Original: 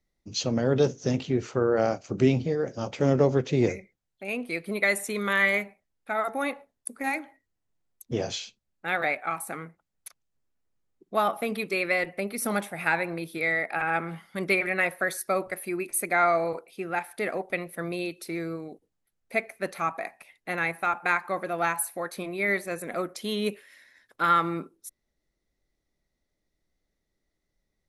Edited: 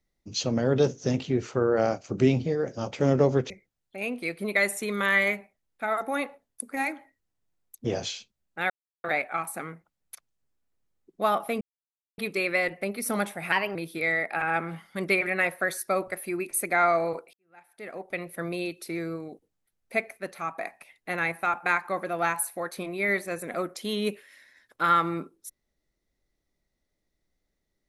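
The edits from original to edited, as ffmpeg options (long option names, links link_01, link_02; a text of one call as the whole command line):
ffmpeg -i in.wav -filter_complex "[0:a]asplit=9[link_01][link_02][link_03][link_04][link_05][link_06][link_07][link_08][link_09];[link_01]atrim=end=3.502[link_10];[link_02]atrim=start=3.768:end=8.97,asetpts=PTS-STARTPTS,afade=type=out:start_time=5.198:duration=0.004:curve=hsin,apad=pad_dur=0.34[link_11];[link_03]atrim=start=8.97:end=11.54,asetpts=PTS-STARTPTS,afade=type=in:duration=0.004:curve=hsin,afade=type=out:start_time=2.566:duration=0.004:curve=hsin,apad=pad_dur=0.57[link_12];[link_04]atrim=start=11.54:end=12.884,asetpts=PTS-STARTPTS,afade=type=in:duration=0.004:curve=hsin[link_13];[link_05]atrim=start=12.88:end=13.15,asetpts=PTS-STARTPTS,asetrate=51156,aresample=44100[link_14];[link_06]atrim=start=13.146:end=16.73,asetpts=PTS-STARTPTS,afade=type=out:start_time=3.58:duration=0.004:curve=hsin[link_15];[link_07]atrim=start=16.73:end=19.572,asetpts=PTS-STARTPTS,afade=type=in:duration=0.97:curve=qua[link_16];[link_08]atrim=start=19.568:end=19.982,asetpts=PTS-STARTPTS,volume=-4.5dB[link_17];[link_09]atrim=start=19.978[link_18];[link_11][link_12][link_13]concat=n=3:v=0:a=1[link_19];[link_10][link_19]acrossfade=duration=0.004:curve1=hsin:curve2=hsin[link_20];[link_20][link_14]acrossfade=duration=0.004:curve1=hsin:curve2=hsin[link_21];[link_15][link_16]concat=n=2:v=0:a=1[link_22];[link_21][link_22]acrossfade=duration=0.004:curve1=hsin:curve2=hsin[link_23];[link_23][link_17]acrossfade=duration=0.004:curve1=hsin:curve2=hsin[link_24];[link_24][link_18]acrossfade=duration=0.004:curve1=hsin:curve2=hsin" out.wav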